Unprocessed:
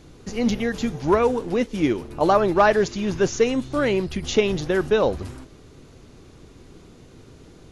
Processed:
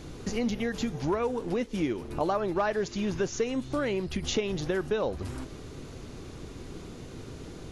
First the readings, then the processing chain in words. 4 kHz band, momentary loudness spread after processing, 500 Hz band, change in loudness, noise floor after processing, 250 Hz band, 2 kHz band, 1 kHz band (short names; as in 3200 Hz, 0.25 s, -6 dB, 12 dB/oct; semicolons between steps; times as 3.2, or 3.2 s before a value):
-6.0 dB, 15 LU, -9.0 dB, -9.0 dB, -44 dBFS, -7.0 dB, -9.0 dB, -10.5 dB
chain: compressor 3:1, threshold -35 dBFS, peak gain reduction 16.5 dB; gain +4.5 dB